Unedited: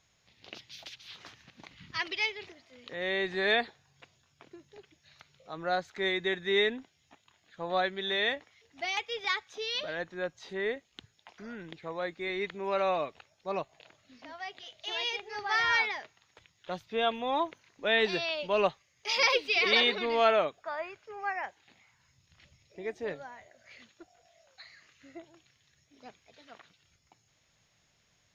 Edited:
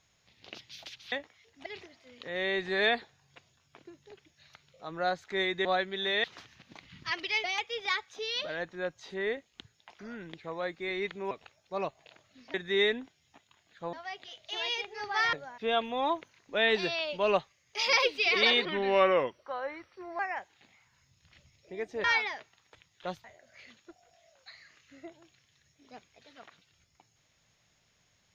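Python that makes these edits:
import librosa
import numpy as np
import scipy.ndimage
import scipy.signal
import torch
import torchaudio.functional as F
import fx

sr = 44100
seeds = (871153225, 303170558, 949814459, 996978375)

y = fx.edit(x, sr, fx.swap(start_s=1.12, length_s=1.2, other_s=8.29, other_length_s=0.54),
    fx.move(start_s=6.31, length_s=1.39, to_s=14.28),
    fx.cut(start_s=12.7, length_s=0.35),
    fx.swap(start_s=15.68, length_s=1.2, other_s=23.11, other_length_s=0.25),
    fx.speed_span(start_s=19.95, length_s=1.31, speed=0.85), tone=tone)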